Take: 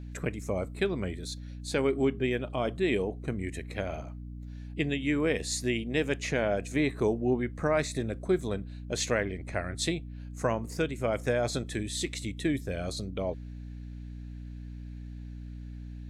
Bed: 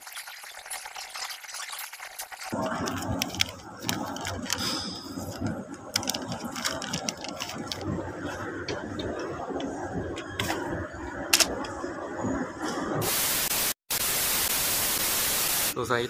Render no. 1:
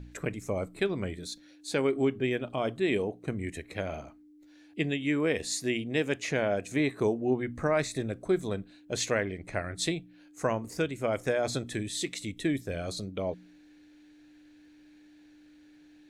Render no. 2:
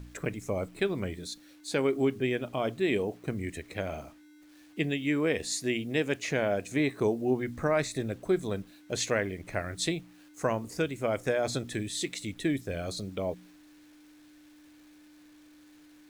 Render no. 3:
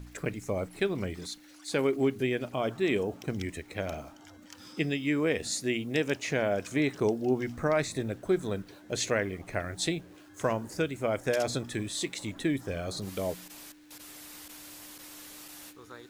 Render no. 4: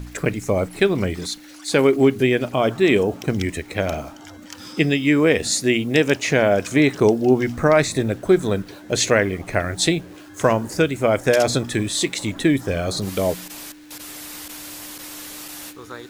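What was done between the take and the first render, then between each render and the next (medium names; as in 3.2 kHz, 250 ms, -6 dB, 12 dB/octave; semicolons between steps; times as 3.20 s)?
de-hum 60 Hz, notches 4
word length cut 10-bit, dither none
add bed -21.5 dB
trim +11.5 dB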